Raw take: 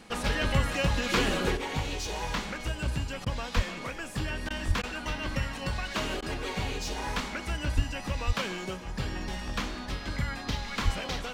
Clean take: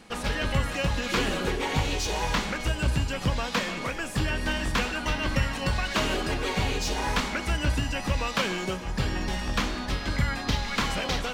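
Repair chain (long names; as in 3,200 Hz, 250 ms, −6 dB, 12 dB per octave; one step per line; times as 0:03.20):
high-pass at the plosives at 0:03.55/0:04.67/0:07.75/0:08.26/0:10.84
repair the gap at 0:03.25/0:04.49/0:04.82/0:06.21, 12 ms
level 0 dB, from 0:01.57 +5.5 dB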